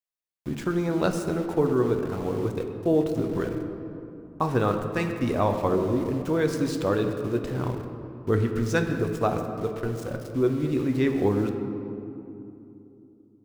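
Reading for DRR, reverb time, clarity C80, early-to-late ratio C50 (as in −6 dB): 4.5 dB, 2.9 s, 7.5 dB, 6.5 dB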